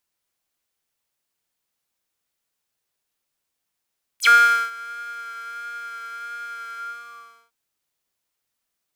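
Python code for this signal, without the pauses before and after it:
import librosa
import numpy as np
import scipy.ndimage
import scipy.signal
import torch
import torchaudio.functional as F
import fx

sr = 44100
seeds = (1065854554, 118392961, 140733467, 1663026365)

y = fx.sub_patch_vibrato(sr, seeds[0], note=70, wave='square', wave2='saw', interval_st=0, detune_cents=13, level2_db=-14.0, sub_db=-1.5, noise_db=-30.0, kind='highpass', cutoff_hz=970.0, q=12.0, env_oct=4.0, env_decay_s=0.07, env_sustain_pct=15, attack_ms=65.0, decay_s=0.44, sustain_db=-23, release_s=0.74, note_s=2.57, lfo_hz=1.5, vibrato_cents=16)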